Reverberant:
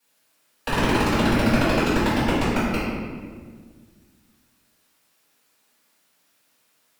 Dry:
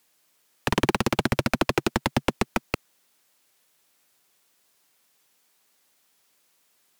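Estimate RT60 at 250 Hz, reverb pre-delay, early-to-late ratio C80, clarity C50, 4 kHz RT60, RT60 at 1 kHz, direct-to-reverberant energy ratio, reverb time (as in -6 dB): 2.4 s, 4 ms, 1.0 dB, -1.0 dB, 1.0 s, 1.5 s, -13.0 dB, 1.7 s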